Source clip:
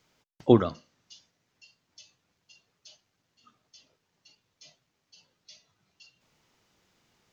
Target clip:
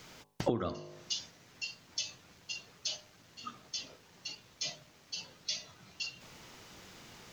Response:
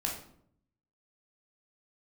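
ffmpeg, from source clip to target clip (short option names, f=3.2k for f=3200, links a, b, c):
-af "alimiter=limit=-13dB:level=0:latency=1:release=130,bandreject=f=50.69:t=h:w=4,bandreject=f=101.38:t=h:w=4,bandreject=f=152.07:t=h:w=4,bandreject=f=202.76:t=h:w=4,bandreject=f=253.45:t=h:w=4,bandreject=f=304.14:t=h:w=4,bandreject=f=354.83:t=h:w=4,bandreject=f=405.52:t=h:w=4,bandreject=f=456.21:t=h:w=4,bandreject=f=506.9:t=h:w=4,bandreject=f=557.59:t=h:w=4,bandreject=f=608.28:t=h:w=4,bandreject=f=658.97:t=h:w=4,bandreject=f=709.66:t=h:w=4,bandreject=f=760.35:t=h:w=4,bandreject=f=811.04:t=h:w=4,bandreject=f=861.73:t=h:w=4,bandreject=f=912.42:t=h:w=4,bandreject=f=963.11:t=h:w=4,bandreject=f=1.0138k:t=h:w=4,bandreject=f=1.06449k:t=h:w=4,bandreject=f=1.11518k:t=h:w=4,acompressor=threshold=-45dB:ratio=16,volume=16.5dB"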